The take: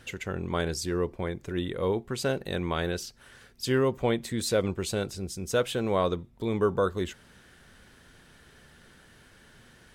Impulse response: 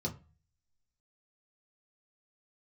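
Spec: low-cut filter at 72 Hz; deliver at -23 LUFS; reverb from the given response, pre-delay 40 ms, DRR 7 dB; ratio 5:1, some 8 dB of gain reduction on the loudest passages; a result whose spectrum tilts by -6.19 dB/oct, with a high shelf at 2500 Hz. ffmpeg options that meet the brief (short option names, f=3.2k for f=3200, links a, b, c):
-filter_complex "[0:a]highpass=72,highshelf=f=2.5k:g=-6,acompressor=threshold=-29dB:ratio=5,asplit=2[a][b];[1:a]atrim=start_sample=2205,adelay=40[c];[b][c]afir=irnorm=-1:irlink=0,volume=-9dB[d];[a][d]amix=inputs=2:normalize=0,volume=9dB"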